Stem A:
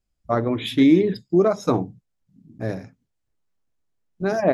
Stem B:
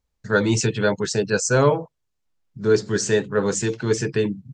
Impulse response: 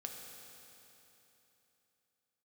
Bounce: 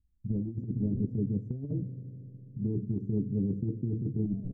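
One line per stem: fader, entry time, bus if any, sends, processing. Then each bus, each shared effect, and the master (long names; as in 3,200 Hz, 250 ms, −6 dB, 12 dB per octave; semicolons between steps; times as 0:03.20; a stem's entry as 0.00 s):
0.0 dB, 0.00 s, muted 0:01.05–0:01.80, send −8 dB, spectral tilt +3 dB per octave; wrap-around overflow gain 17.5 dB; automatic ducking −12 dB, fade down 0.20 s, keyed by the second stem
−2.0 dB, 0.00 s, send −8.5 dB, comb filter 3 ms, depth 35%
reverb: on, RT60 3.3 s, pre-delay 3 ms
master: inverse Chebyshev low-pass filter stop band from 1,100 Hz, stop band 70 dB; compressor whose output falls as the input rises −29 dBFS, ratio −0.5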